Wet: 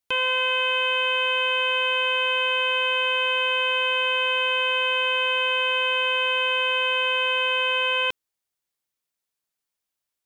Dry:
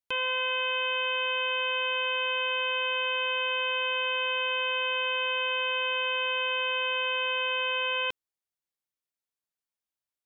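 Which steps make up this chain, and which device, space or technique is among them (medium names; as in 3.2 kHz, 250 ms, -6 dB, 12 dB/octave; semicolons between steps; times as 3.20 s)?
exciter from parts (in parallel at -10.5 dB: high-pass 3.2 kHz 6 dB/octave + saturation -37 dBFS, distortion -7 dB); on the sum: trim +5.5 dB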